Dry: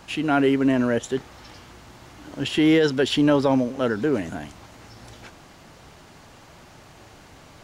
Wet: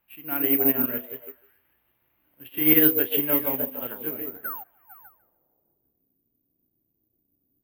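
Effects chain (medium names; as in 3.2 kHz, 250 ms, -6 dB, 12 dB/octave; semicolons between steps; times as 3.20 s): doubling 32 ms -7.5 dB; painted sound fall, 4.44–4.64 s, 710–1600 Hz -24 dBFS; low-pass sweep 2.5 kHz -> 280 Hz, 4.21–5.92 s; repeats whose band climbs or falls 150 ms, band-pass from 370 Hz, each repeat 0.7 oct, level 0 dB; careless resampling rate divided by 3×, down none, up zero stuff; upward expansion 2.5:1, over -24 dBFS; trim -7 dB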